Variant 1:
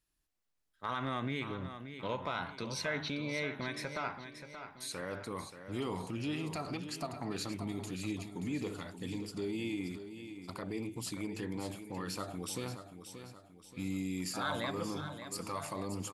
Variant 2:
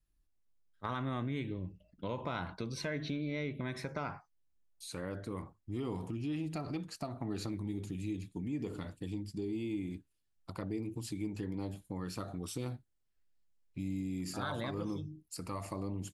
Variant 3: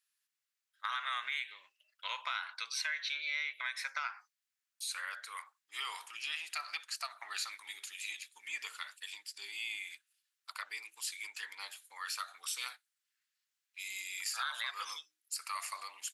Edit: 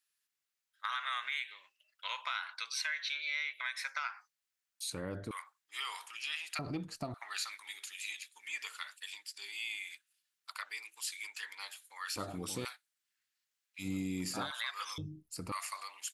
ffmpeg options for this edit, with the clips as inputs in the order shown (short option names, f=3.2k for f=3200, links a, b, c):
-filter_complex "[1:a]asplit=3[a][b][c];[0:a]asplit=2[d][e];[2:a]asplit=6[f][g][h][i][j][k];[f]atrim=end=4.902[l];[a]atrim=start=4.898:end=5.312[m];[g]atrim=start=5.308:end=6.592[n];[b]atrim=start=6.588:end=7.142[o];[h]atrim=start=7.138:end=12.162[p];[d]atrim=start=12.158:end=12.652[q];[i]atrim=start=12.648:end=13.88[r];[e]atrim=start=13.78:end=14.52[s];[j]atrim=start=14.42:end=14.982[t];[c]atrim=start=14.978:end=15.522[u];[k]atrim=start=15.518[v];[l][m]acrossfade=d=0.004:c1=hsin:c2=hsin[w];[w][n]acrossfade=d=0.004:c1=hsin:c2=hsin[x];[x][o]acrossfade=d=0.004:c1=hsin:c2=hsin[y];[y][p]acrossfade=d=0.004:c1=hsin:c2=hsin[z];[z][q]acrossfade=d=0.004:c1=hsin:c2=hsin[aa];[aa][r]acrossfade=d=0.004:c1=hsin:c2=hsin[ab];[ab][s]acrossfade=d=0.1:c1=tri:c2=tri[ac];[ac][t]acrossfade=d=0.1:c1=tri:c2=tri[ad];[ad][u]acrossfade=d=0.004:c1=hsin:c2=hsin[ae];[ae][v]acrossfade=d=0.004:c1=hsin:c2=hsin"